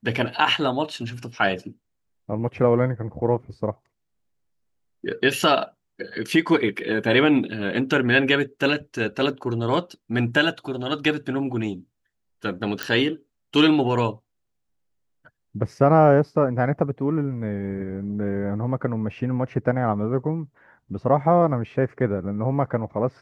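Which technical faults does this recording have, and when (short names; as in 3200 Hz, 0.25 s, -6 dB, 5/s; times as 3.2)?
12.83 pop -10 dBFS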